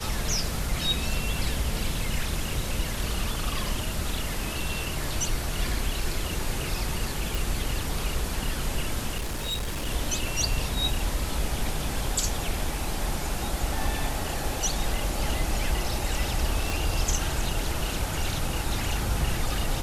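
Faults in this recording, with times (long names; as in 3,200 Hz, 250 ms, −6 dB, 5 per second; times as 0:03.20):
0:07.35: click
0:09.17–0:09.88: clipping −26.5 dBFS
0:16.70: click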